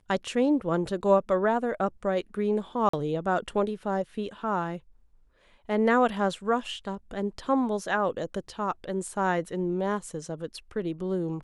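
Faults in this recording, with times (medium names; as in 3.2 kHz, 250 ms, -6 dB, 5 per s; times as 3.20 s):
2.89–2.93 s: dropout 44 ms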